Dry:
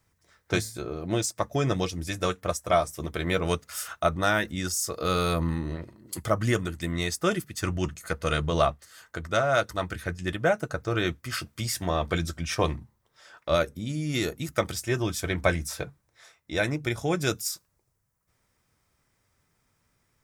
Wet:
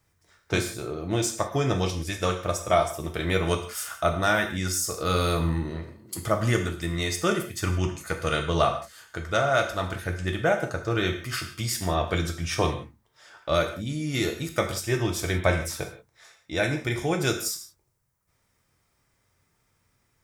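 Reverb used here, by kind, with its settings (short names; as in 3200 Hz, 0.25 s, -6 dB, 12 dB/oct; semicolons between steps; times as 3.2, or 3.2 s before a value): non-linear reverb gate 0.2 s falling, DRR 3.5 dB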